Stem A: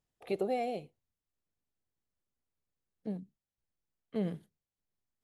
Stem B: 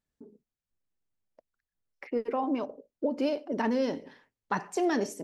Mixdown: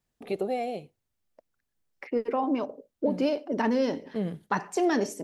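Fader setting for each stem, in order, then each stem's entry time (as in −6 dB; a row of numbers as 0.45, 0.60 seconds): +3.0, +2.5 decibels; 0.00, 0.00 seconds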